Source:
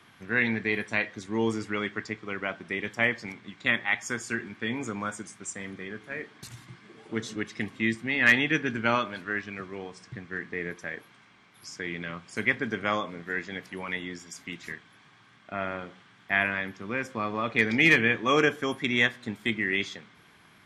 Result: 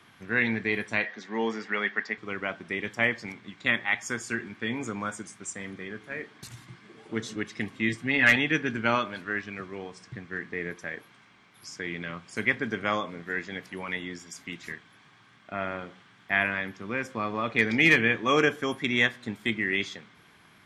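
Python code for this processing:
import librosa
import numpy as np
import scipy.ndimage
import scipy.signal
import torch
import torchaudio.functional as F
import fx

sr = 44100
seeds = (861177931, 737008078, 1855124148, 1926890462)

y = fx.cabinet(x, sr, low_hz=200.0, low_slope=24, high_hz=5700.0, hz=(310.0, 760.0, 1800.0), db=(-9, 5, 9), at=(1.04, 2.18))
y = fx.comb(y, sr, ms=7.0, depth=0.65, at=(7.88, 8.36))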